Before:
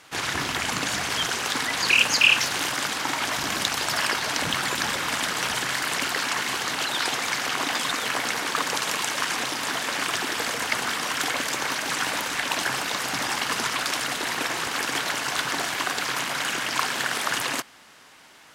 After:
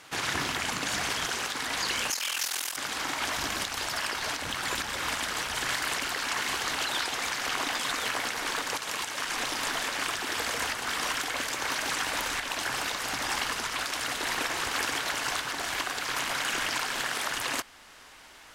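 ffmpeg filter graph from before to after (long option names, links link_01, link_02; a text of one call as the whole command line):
ffmpeg -i in.wav -filter_complex "[0:a]asettb=1/sr,asplit=3[link_01][link_02][link_03];[link_01]atrim=end=2.104[link_04];[link_02]atrim=start=2.1:end=2.77,asetpts=PTS-STARTPTS,afade=type=in:duration=0.004:curve=qsin,afade=type=out:start_time=0.666:duration=0.004:curve=qsin,highpass=frequency=620:poles=1,aemphasis=mode=production:type=50kf,aeval=exprs='val(0)*sin(2*PI*21*n/s)':channel_layout=same[link_05];[link_03]atrim=start=2.766[link_06];[link_04][link_05]acrossfade=duration=0.004:curve1=hsin:curve2=qsin[link_07];[link_07][link_06]acrossfade=duration=0.004:curve1=qsin:curve2=hsin,afftfilt=real='re*lt(hypot(re,im),0.355)':imag='im*lt(hypot(re,im),0.355)':win_size=1024:overlap=0.75,asubboost=boost=7.5:cutoff=54,alimiter=limit=-18dB:level=0:latency=1:release=438" out.wav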